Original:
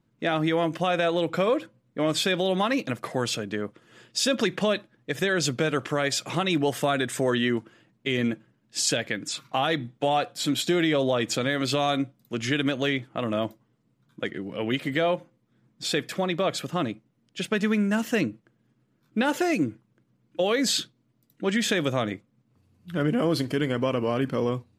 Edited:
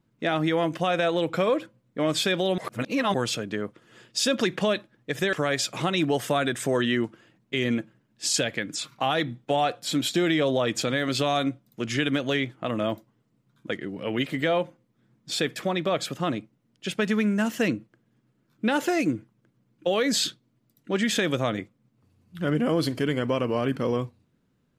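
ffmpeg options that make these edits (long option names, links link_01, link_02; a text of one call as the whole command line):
ffmpeg -i in.wav -filter_complex "[0:a]asplit=4[link_01][link_02][link_03][link_04];[link_01]atrim=end=2.582[link_05];[link_02]atrim=start=2.578:end=3.142,asetpts=PTS-STARTPTS,areverse[link_06];[link_03]atrim=start=3.138:end=5.332[link_07];[link_04]atrim=start=5.858[link_08];[link_05][link_06]acrossfade=duration=0.004:curve1=hsin:curve2=hsin[link_09];[link_09][link_07]acrossfade=duration=0.004:curve1=hsin:curve2=hsin[link_10];[link_10][link_08]acrossfade=duration=0.004:curve1=hsin:curve2=hsin" out.wav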